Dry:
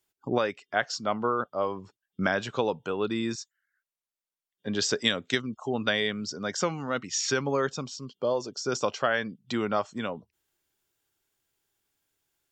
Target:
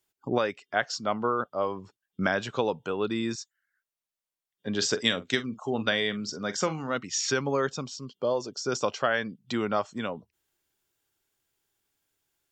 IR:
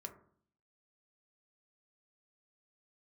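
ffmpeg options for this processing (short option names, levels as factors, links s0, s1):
-filter_complex "[0:a]asettb=1/sr,asplit=3[s0][s1][s2];[s0]atrim=end=4.754[s3];[s1]atrim=start=4.75:end=6.97,asetpts=PTS-STARTPTS,afade=t=in:d=0.004:c=qsin,afade=t=out:st=2.216:d=0.004:c=qsin,asplit=2[s4][s5];[s5]adelay=44,volume=0.211[s6];[s4][s6]amix=inputs=2:normalize=0,atrim=end_sample=97902[s7];[s2]atrim=start=6.966[s8];[s3][s7]acrossfade=d=0.004:c1=hsin:c2=qsin[s9];[s9][s8]acrossfade=d=0.004:c1=qsin:c2=hsin"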